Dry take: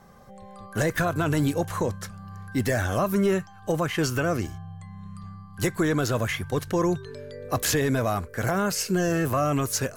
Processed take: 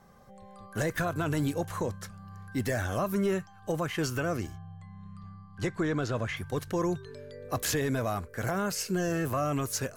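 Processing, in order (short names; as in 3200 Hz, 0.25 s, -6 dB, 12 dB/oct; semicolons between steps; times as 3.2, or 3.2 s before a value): 4.56–6.37 air absorption 84 m; gain -5.5 dB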